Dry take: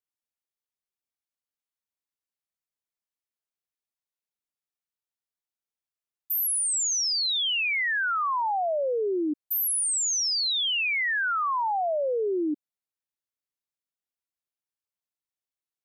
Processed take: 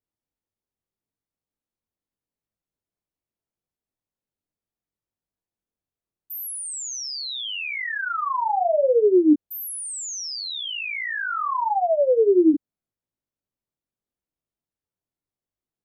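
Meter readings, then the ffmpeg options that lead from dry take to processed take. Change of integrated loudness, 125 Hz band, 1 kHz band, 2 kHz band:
+2.0 dB, no reading, +3.0 dB, -2.5 dB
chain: -af "flanger=delay=19:depth=3.4:speed=0.77,acontrast=88,tiltshelf=f=790:g=10"

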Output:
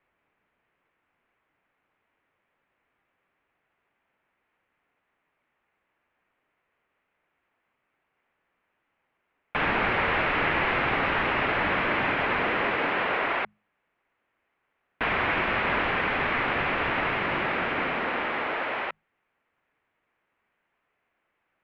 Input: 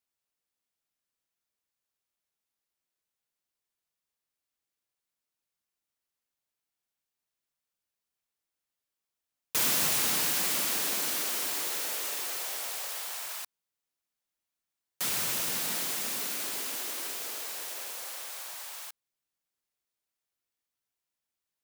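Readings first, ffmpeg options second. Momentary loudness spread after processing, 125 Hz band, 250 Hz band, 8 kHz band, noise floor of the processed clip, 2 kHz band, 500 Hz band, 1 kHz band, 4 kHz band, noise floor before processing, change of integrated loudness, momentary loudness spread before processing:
5 LU, +14.0 dB, +13.0 dB, under -35 dB, -78 dBFS, +14.5 dB, +14.5 dB, +15.5 dB, -1.0 dB, under -85 dBFS, +3.5 dB, 13 LU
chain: -filter_complex "[0:a]bandreject=f=50:t=h:w=6,bandreject=f=100:t=h:w=6,bandreject=f=150:t=h:w=6,bandreject=f=200:t=h:w=6,bandreject=f=250:t=h:w=6,bandreject=f=300:t=h:w=6,bandreject=f=350:t=h:w=6,bandreject=f=400:t=h:w=6,bandreject=f=450:t=h:w=6,bandreject=f=500:t=h:w=6,asubboost=boost=11.5:cutoff=92,asplit=2[s0][s1];[s1]alimiter=level_in=1.26:limit=0.0631:level=0:latency=1,volume=0.794,volume=1.12[s2];[s0][s2]amix=inputs=2:normalize=0,aeval=exprs='0.251*sin(PI/2*3.55*val(0)/0.251)':c=same,highpass=f=310:t=q:w=0.5412,highpass=f=310:t=q:w=1.307,lowpass=f=2700:t=q:w=0.5176,lowpass=f=2700:t=q:w=0.7071,lowpass=f=2700:t=q:w=1.932,afreqshift=-290"

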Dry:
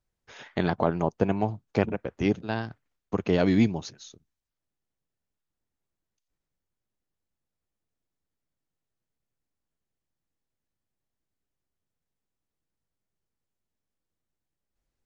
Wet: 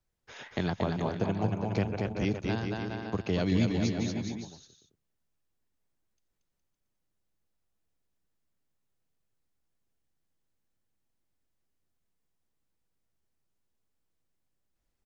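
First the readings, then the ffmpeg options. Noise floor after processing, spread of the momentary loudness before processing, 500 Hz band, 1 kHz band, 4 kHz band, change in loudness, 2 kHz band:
-80 dBFS, 12 LU, -5.5 dB, -5.0 dB, +0.5 dB, -4.0 dB, -3.0 dB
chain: -filter_complex "[0:a]aecho=1:1:230|414|561.2|679|773.2:0.631|0.398|0.251|0.158|0.1,acrossover=split=150|3000[s0][s1][s2];[s1]acompressor=threshold=0.0178:ratio=2[s3];[s0][s3][s2]amix=inputs=3:normalize=0"

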